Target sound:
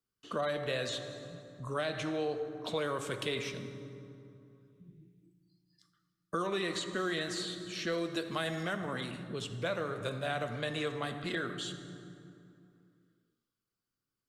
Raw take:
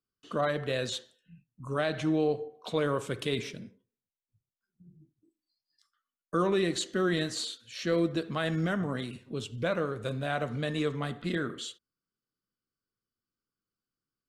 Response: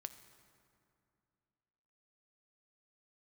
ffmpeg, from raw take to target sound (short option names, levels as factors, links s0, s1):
-filter_complex "[0:a]asettb=1/sr,asplit=3[s0][s1][s2];[s0]atrim=end=8.114[s3];[s1]atrim=start=8.11:end=8.63,asetpts=PTS-STARTPTS,afade=t=in:d=0.004:c=qsin,afade=t=out:st=0.516:d=0.004:c=qsin,highshelf=f=6600:g=10.5[s4];[s2]atrim=start=8.626[s5];[s3][s4]acrossfade=d=0.004:c1=hsin:c2=qsin[s6];[s6][s5]acrossfade=d=0.004:c1=qsin:c2=hsin[s7];[1:a]atrim=start_sample=2205,asetrate=41454,aresample=44100[s8];[s7][s8]afir=irnorm=-1:irlink=0,acrossover=split=480|3000[s9][s10][s11];[s9]acompressor=threshold=0.00501:ratio=4[s12];[s10]acompressor=threshold=0.0112:ratio=4[s13];[s11]acompressor=threshold=0.00447:ratio=4[s14];[s12][s13][s14]amix=inputs=3:normalize=0,volume=1.88"